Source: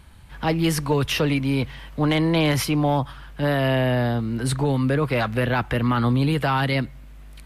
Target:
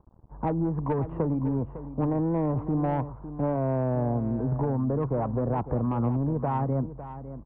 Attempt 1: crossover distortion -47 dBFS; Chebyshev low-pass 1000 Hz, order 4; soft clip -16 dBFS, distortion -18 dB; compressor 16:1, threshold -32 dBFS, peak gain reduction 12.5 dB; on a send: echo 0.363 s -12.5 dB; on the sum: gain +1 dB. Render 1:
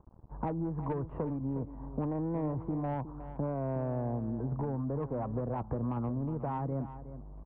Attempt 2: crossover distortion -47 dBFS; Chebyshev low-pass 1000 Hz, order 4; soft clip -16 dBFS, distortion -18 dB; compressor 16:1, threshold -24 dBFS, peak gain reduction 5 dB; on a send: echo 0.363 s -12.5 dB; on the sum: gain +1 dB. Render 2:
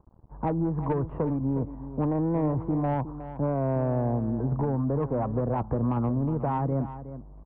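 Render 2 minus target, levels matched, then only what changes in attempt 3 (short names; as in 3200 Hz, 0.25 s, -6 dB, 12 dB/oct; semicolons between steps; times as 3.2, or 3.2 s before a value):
echo 0.191 s early
change: echo 0.554 s -12.5 dB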